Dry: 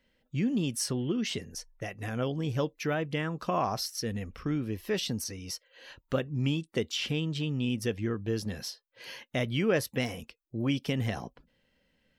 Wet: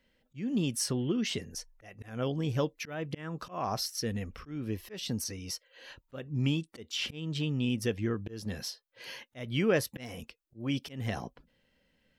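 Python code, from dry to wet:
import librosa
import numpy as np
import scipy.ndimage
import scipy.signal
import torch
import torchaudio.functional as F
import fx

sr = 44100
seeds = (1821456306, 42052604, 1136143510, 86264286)

y = fx.auto_swell(x, sr, attack_ms=243.0)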